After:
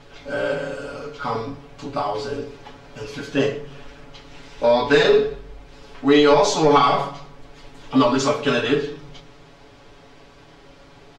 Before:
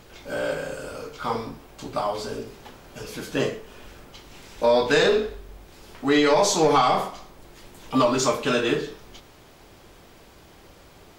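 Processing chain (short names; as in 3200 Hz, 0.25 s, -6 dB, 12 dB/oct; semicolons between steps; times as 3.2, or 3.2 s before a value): LPF 5200 Hz 12 dB/oct; comb 7.1 ms, depth 94%; on a send: reverb RT60 0.60 s, pre-delay 4 ms, DRR 13 dB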